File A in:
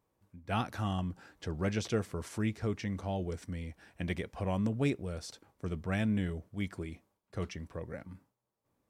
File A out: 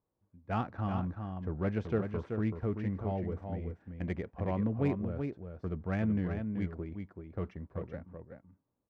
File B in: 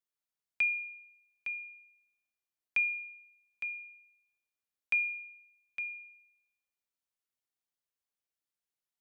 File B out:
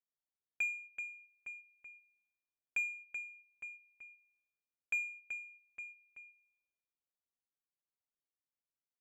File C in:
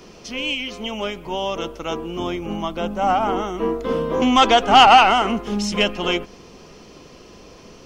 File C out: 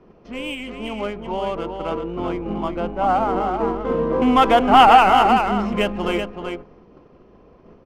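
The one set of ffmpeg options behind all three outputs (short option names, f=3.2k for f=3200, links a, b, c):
-filter_complex "[0:a]agate=range=-6dB:threshold=-42dB:ratio=16:detection=peak,lowpass=2.1k,aecho=1:1:381:0.501,asplit=2[a][b];[b]adynamicsmooth=sensitivity=5.5:basefreq=1.6k,volume=3dB[c];[a][c]amix=inputs=2:normalize=0,volume=-7.5dB"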